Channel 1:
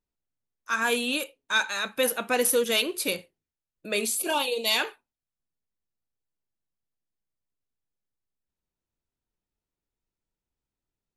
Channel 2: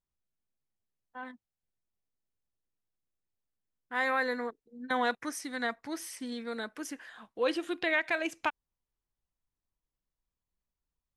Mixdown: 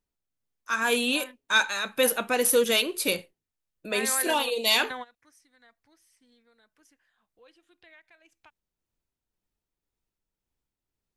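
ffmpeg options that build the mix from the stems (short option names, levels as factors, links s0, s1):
-filter_complex "[0:a]volume=1.33,asplit=2[s0][s1];[1:a]asubboost=boost=7.5:cutoff=82,acompressor=threshold=0.00708:ratio=1.5,adynamicequalizer=threshold=0.00447:dfrequency=1900:dqfactor=0.7:tfrequency=1900:tqfactor=0.7:attack=5:release=100:ratio=0.375:range=2:mode=boostabove:tftype=highshelf,volume=1.33[s2];[s1]apad=whole_len=492185[s3];[s2][s3]sidechaingate=range=0.0708:threshold=0.00501:ratio=16:detection=peak[s4];[s0][s4]amix=inputs=2:normalize=0,tremolo=f=1.9:d=0.31"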